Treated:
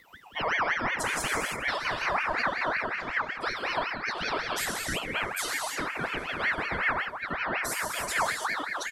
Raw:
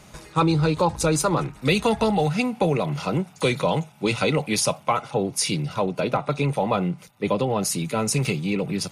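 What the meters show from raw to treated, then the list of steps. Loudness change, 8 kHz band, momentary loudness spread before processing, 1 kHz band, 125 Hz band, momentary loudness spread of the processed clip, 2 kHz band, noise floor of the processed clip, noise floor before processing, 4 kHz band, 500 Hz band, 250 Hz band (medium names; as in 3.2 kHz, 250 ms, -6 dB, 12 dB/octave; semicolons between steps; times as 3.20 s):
-6.0 dB, -7.5 dB, 5 LU, -4.0 dB, -20.5 dB, 4 LU, +4.5 dB, -39 dBFS, -49 dBFS, -4.5 dB, -12.5 dB, -17.0 dB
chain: expander on every frequency bin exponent 2; peaking EQ 1.6 kHz +7 dB 0.69 oct; upward compressor, threshold -39 dBFS; peak limiter -21.5 dBFS, peak gain reduction 12.5 dB; feedback delay 401 ms, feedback 56%, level -21 dB; gated-style reverb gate 360 ms flat, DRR -1.5 dB; ring modulator with a swept carrier 1.4 kHz, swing 45%, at 5.4 Hz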